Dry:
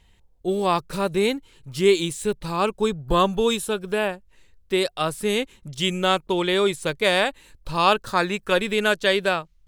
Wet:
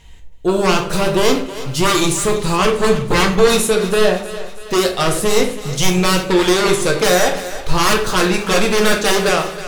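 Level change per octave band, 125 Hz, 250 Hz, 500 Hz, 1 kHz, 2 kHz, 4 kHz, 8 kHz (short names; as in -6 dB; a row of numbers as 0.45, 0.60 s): +10.0, +8.0, +6.5, +5.5, +6.5, +6.5, +14.5 dB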